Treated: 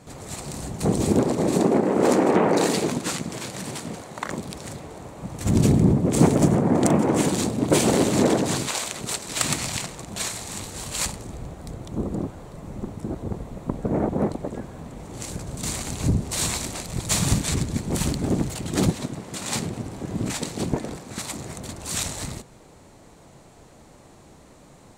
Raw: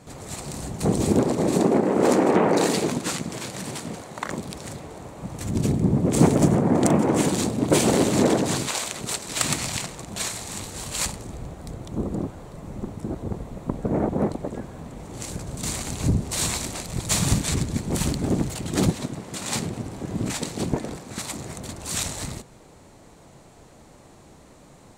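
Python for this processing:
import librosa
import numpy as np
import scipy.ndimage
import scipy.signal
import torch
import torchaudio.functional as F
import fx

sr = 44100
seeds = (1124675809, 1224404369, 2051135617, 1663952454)

y = fx.env_flatten(x, sr, amount_pct=50, at=(5.45, 5.92), fade=0.02)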